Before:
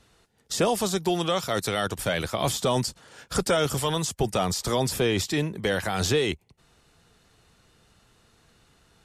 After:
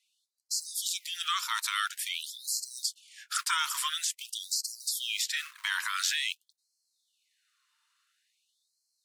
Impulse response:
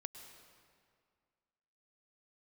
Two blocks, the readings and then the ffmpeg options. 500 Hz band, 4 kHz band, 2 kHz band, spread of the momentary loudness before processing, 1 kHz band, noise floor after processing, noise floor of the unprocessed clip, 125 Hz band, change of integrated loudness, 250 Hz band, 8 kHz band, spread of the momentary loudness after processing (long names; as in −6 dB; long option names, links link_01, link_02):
below −40 dB, −0.5 dB, −1.5 dB, 4 LU, −6.5 dB, −80 dBFS, −63 dBFS, below −40 dB, −5.0 dB, below −40 dB, 0.0 dB, 6 LU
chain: -filter_complex "[0:a]agate=range=-10dB:threshold=-55dB:ratio=16:detection=peak,acrossover=split=200|1200|2300[link_01][link_02][link_03][link_04];[link_01]acrusher=bits=2:mode=log:mix=0:aa=0.000001[link_05];[link_05][link_02][link_03][link_04]amix=inputs=4:normalize=0,afftfilt=real='re*gte(b*sr/1024,880*pow(4100/880,0.5+0.5*sin(2*PI*0.48*pts/sr)))':imag='im*gte(b*sr/1024,880*pow(4100/880,0.5+0.5*sin(2*PI*0.48*pts/sr)))':win_size=1024:overlap=0.75"